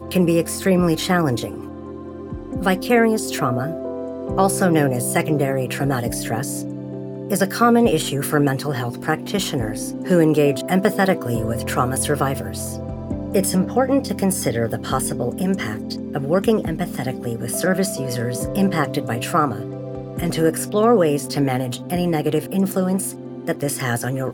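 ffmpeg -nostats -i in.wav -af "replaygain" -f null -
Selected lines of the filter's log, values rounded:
track_gain = +0.2 dB
track_peak = 0.554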